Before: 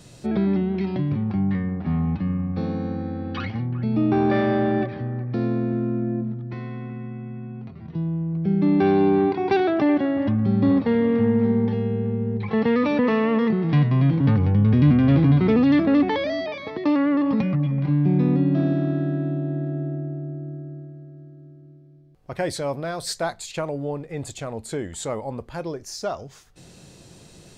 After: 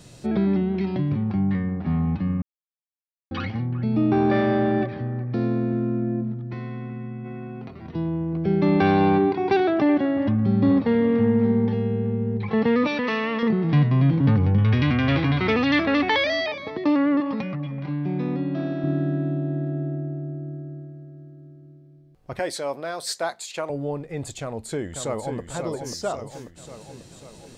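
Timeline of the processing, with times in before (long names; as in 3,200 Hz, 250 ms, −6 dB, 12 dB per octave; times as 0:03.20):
0:02.42–0:03.31: silence
0:07.24–0:09.17: ceiling on every frequency bin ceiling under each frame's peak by 12 dB
0:12.87–0:13.43: tilt shelving filter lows −8 dB, about 1,300 Hz
0:14.58–0:16.52: drawn EQ curve 110 Hz 0 dB, 160 Hz −9 dB, 2,300 Hz +10 dB, 4,900 Hz +8 dB, 10,000 Hz +11 dB
0:17.20–0:18.84: low-shelf EQ 310 Hz −10.5 dB
0:22.39–0:23.70: Bessel high-pass filter 370 Hz
0:24.41–0:25.39: delay throw 540 ms, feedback 60%, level −6 dB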